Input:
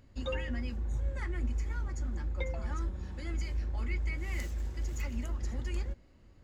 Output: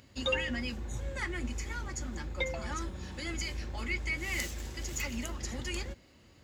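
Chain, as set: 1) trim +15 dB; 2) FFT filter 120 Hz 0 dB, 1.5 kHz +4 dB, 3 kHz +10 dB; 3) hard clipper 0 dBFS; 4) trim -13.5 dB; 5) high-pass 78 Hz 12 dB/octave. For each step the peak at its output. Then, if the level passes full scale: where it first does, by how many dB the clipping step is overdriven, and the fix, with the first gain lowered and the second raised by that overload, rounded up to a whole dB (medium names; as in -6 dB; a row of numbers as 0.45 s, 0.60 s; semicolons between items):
-6.5 dBFS, -2.0 dBFS, -2.0 dBFS, -15.5 dBFS, -16.0 dBFS; nothing clips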